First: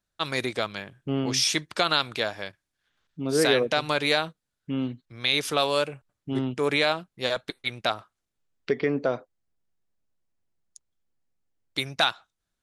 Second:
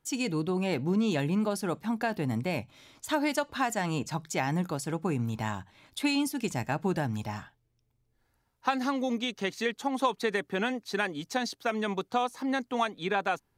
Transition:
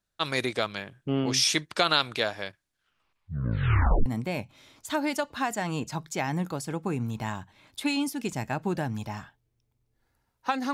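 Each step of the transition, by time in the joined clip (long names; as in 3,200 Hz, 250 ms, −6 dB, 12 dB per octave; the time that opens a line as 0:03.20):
first
0:02.74: tape stop 1.32 s
0:04.06: continue with second from 0:02.25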